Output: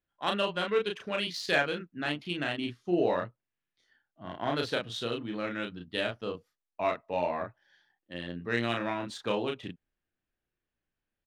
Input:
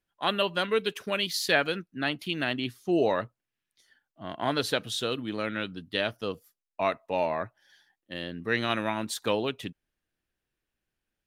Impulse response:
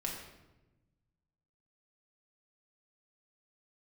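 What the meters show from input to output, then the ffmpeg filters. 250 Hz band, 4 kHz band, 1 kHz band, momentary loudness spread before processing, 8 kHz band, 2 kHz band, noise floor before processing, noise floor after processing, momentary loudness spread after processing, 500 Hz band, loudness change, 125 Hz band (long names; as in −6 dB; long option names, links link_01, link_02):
−2.0 dB, −4.5 dB, −2.5 dB, 13 LU, −10.0 dB, −2.5 dB, below −85 dBFS, below −85 dBFS, 13 LU, −2.0 dB, −3.0 dB, −2.0 dB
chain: -filter_complex "[0:a]asplit=2[link_01][link_02];[link_02]adelay=34,volume=-3dB[link_03];[link_01][link_03]amix=inputs=2:normalize=0,adynamicsmooth=sensitivity=1.5:basefreq=4100,volume=-4dB"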